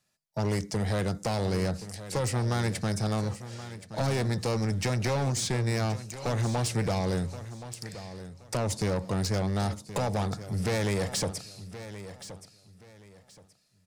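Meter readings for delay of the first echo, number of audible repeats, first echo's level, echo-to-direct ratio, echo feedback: 1074 ms, 2, -13.5 dB, -13.0 dB, 26%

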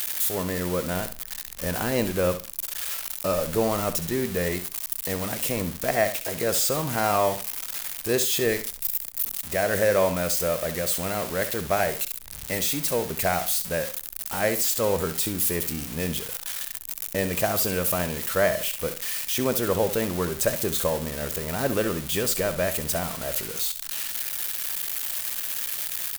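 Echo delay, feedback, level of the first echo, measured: 67 ms, 23%, -11.5 dB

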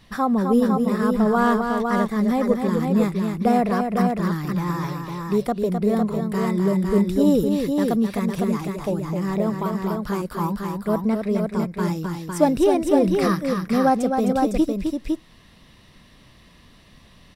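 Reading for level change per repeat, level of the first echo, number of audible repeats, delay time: no regular repeats, -6.0 dB, 2, 259 ms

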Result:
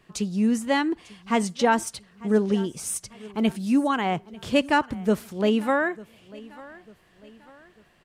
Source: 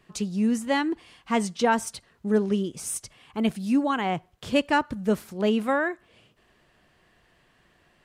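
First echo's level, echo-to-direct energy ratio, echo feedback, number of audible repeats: -21.0 dB, -20.0 dB, 43%, 2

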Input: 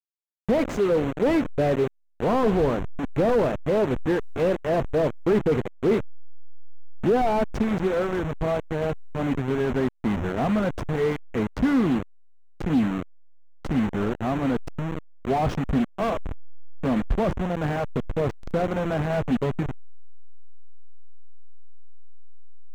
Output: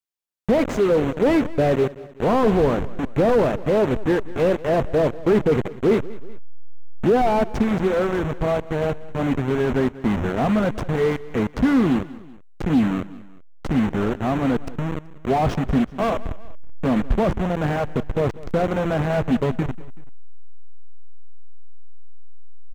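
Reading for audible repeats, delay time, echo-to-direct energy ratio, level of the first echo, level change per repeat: 2, 190 ms, -18.0 dB, -19.0 dB, -6.0 dB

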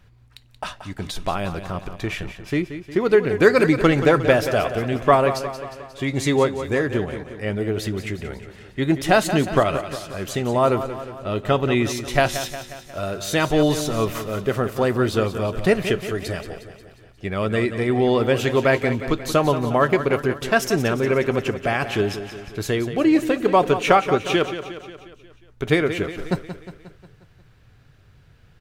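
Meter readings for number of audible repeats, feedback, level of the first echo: 5, 56%, -11.0 dB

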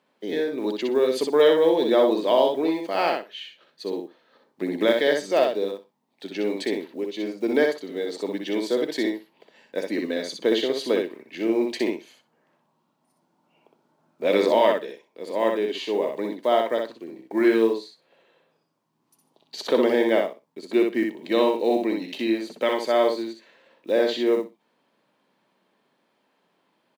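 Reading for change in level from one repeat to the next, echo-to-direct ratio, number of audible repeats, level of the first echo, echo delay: -16.0 dB, -4.0 dB, 2, -4.0 dB, 62 ms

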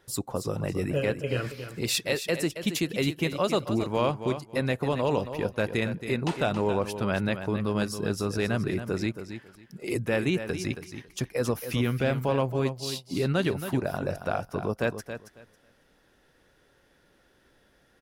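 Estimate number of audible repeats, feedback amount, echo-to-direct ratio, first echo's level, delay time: 2, 19%, -10.0 dB, -10.0 dB, 274 ms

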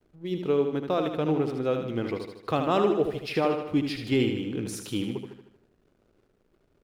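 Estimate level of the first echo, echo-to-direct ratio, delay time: -6.5 dB, -5.0 dB, 77 ms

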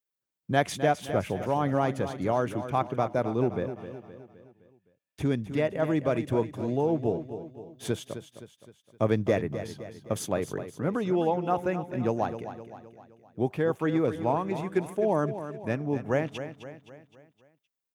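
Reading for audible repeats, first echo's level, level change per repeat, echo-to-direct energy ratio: 4, -11.0 dB, -6.0 dB, -10.0 dB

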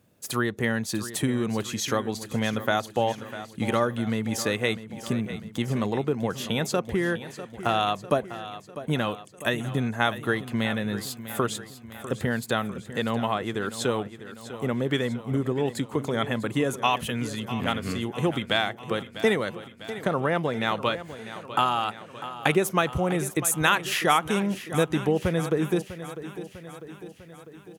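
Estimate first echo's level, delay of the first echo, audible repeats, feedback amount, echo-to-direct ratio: -13.5 dB, 649 ms, 5, 58%, -11.5 dB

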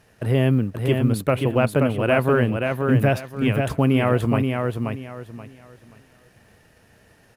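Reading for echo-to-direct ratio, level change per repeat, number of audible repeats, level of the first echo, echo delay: -4.0 dB, -11.5 dB, 3, -4.5 dB, 529 ms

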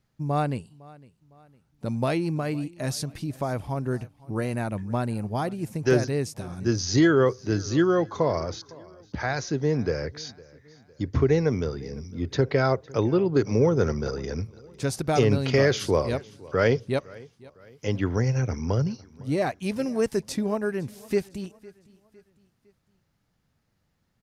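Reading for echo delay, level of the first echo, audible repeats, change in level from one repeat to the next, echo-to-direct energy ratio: 507 ms, -22.5 dB, 2, -7.5 dB, -21.5 dB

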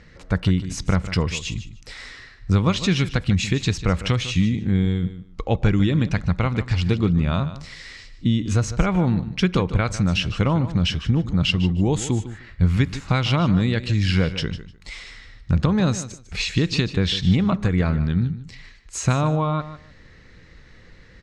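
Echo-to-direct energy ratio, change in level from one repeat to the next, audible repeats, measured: -13.5 dB, -15.0 dB, 2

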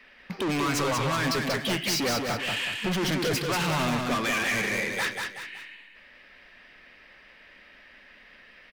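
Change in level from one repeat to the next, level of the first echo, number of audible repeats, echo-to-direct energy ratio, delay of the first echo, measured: -8.0 dB, -4.0 dB, 3, -3.5 dB, 187 ms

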